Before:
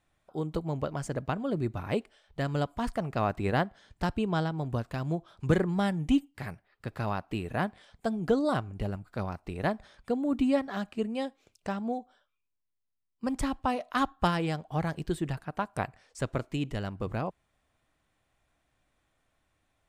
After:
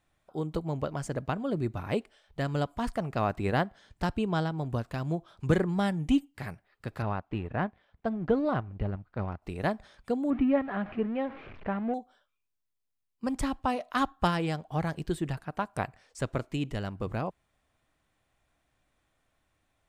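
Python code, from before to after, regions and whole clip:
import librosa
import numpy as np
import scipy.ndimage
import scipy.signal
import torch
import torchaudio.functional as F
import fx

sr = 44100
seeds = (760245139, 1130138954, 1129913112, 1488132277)

y = fx.chain(x, sr, fx.law_mismatch(coded='A'),
    fx.lowpass(hz=2400.0, slope=12),
    fx.peak_eq(hz=66.0, db=6.0, octaves=1.6), at=(7.02, 9.42))
y = fx.chain(y, sr, fx.zero_step(step_db=-38.5),
    fx.lowpass(hz=2400.0, slope=24), at=(10.3, 11.94))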